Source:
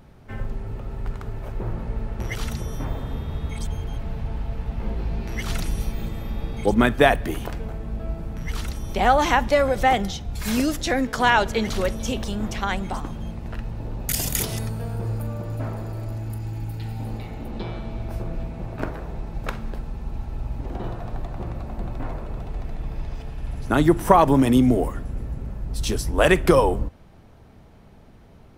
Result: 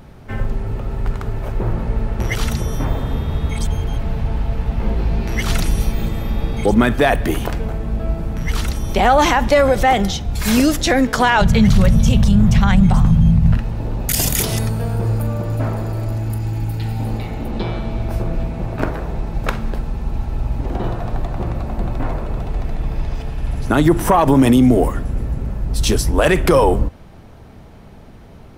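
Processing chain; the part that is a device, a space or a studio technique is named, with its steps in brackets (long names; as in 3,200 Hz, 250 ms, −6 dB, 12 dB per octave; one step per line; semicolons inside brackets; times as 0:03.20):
0:11.41–0:13.57: low shelf with overshoot 230 Hz +11 dB, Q 3
soft clipper into limiter (soft clipping −4 dBFS, distortion −25 dB; brickwall limiter −13 dBFS, peak gain reduction 8 dB)
level +8.5 dB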